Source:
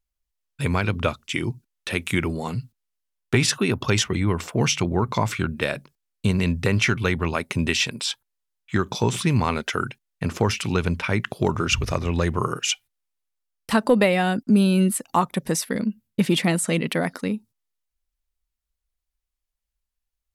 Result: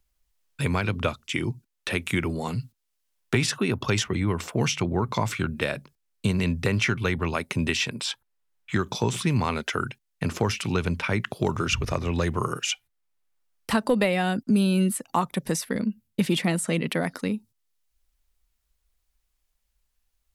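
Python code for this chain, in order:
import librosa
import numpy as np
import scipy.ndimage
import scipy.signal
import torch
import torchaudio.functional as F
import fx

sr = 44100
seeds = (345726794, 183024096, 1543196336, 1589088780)

y = fx.band_squash(x, sr, depth_pct=40)
y = F.gain(torch.from_numpy(y), -3.0).numpy()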